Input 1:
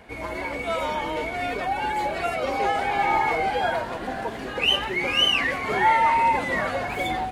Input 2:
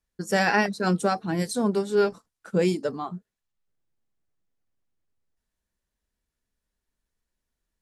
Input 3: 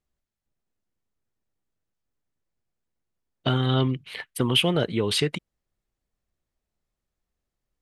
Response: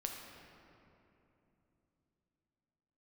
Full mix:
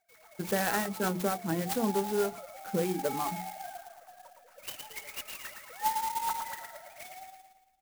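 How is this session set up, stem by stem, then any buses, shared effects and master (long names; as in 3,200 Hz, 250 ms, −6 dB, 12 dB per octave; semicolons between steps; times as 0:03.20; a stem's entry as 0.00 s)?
−19.5 dB, 0.00 s, no bus, no send, echo send −5 dB, three sine waves on the formant tracks; hollow resonant body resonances 860/1,300 Hz, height 9 dB, ringing for 100 ms
−1.5 dB, 0.20 s, bus A, no send, no echo send, no processing
muted
bus A: 0.0 dB, downward compressor 6 to 1, threshold −25 dBFS, peak gain reduction 8 dB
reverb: not used
echo: repeating echo 113 ms, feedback 51%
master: mains-hum notches 60/120/180/240/300/360/420 Hz; converter with an unsteady clock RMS 0.066 ms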